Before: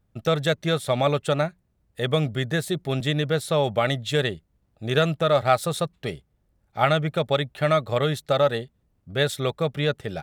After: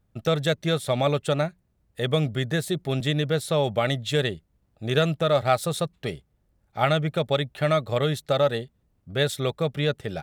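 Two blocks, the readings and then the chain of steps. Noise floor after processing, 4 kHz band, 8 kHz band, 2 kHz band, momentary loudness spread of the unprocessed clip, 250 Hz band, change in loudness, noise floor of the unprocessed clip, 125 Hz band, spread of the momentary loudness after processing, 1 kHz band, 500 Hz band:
-69 dBFS, -0.5 dB, 0.0 dB, -2.0 dB, 9 LU, 0.0 dB, -1.0 dB, -69 dBFS, 0.0 dB, 9 LU, -2.5 dB, -1.0 dB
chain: dynamic bell 1.2 kHz, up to -3 dB, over -33 dBFS, Q 0.75

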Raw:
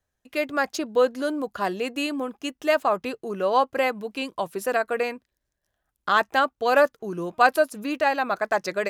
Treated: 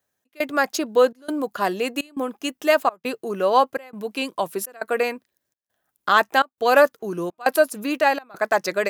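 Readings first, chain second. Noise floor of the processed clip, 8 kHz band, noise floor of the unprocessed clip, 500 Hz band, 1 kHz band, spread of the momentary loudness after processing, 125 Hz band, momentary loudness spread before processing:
-80 dBFS, +5.5 dB, -81 dBFS, +2.5 dB, +2.0 dB, 11 LU, +1.5 dB, 11 LU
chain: high-pass 160 Hz 12 dB/octave; treble shelf 12 kHz +11.5 dB; trance gate "xxx..xxxxxx" 187 bpm -24 dB; trim +3.5 dB

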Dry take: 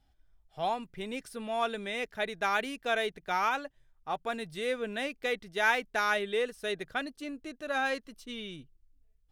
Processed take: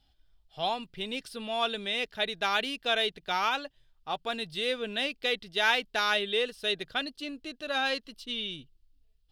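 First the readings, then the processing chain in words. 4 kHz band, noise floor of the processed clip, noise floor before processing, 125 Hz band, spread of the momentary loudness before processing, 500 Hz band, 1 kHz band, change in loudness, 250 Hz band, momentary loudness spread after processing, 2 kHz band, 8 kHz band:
+10.0 dB, -68 dBFS, -69 dBFS, 0.0 dB, 12 LU, 0.0 dB, 0.0 dB, +2.5 dB, 0.0 dB, 10 LU, +1.0 dB, +1.0 dB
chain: high-order bell 3.7 kHz +10 dB 1.1 oct

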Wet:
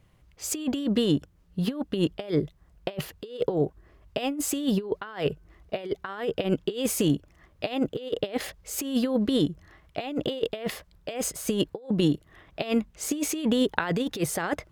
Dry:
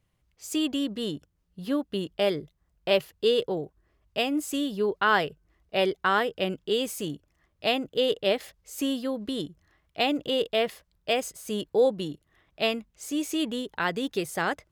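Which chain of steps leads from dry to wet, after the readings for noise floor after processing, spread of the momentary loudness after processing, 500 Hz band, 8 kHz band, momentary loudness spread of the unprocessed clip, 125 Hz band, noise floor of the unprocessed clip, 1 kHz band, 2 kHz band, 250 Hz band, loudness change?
-61 dBFS, 12 LU, -2.5 dB, +6.5 dB, 11 LU, +9.0 dB, -73 dBFS, -7.0 dB, -6.0 dB, +3.5 dB, -0.5 dB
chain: treble shelf 2.9 kHz -6 dB; compressor with a negative ratio -32 dBFS, ratio -0.5; wow and flutter 23 cents; trim +6.5 dB

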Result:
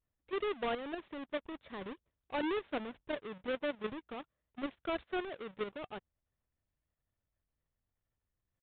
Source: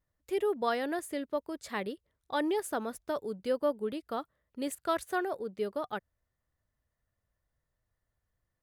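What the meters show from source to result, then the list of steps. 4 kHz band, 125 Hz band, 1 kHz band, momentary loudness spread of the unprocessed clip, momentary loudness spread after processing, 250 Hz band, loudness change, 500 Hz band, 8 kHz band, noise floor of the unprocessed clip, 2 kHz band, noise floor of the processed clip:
-2.0 dB, no reading, -7.0 dB, 8 LU, 12 LU, -5.0 dB, -5.5 dB, -6.0 dB, under -30 dB, -85 dBFS, -3.0 dB, under -85 dBFS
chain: square wave that keeps the level; level held to a coarse grid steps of 9 dB; resampled via 8 kHz; trim -6 dB

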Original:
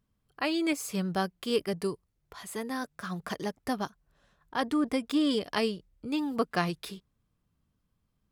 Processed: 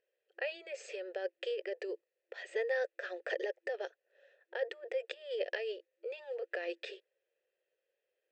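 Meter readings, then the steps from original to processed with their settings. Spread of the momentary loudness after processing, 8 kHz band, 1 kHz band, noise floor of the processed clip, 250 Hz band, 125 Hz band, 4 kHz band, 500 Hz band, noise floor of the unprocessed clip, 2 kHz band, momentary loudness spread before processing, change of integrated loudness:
10 LU, under -15 dB, -16.0 dB, under -85 dBFS, -24.5 dB, under -40 dB, -11.5 dB, -2.5 dB, -78 dBFS, -3.0 dB, 12 LU, -8.0 dB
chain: compressor with a negative ratio -33 dBFS, ratio -1; vowel filter e; FFT band-pass 340–8300 Hz; trim +9.5 dB

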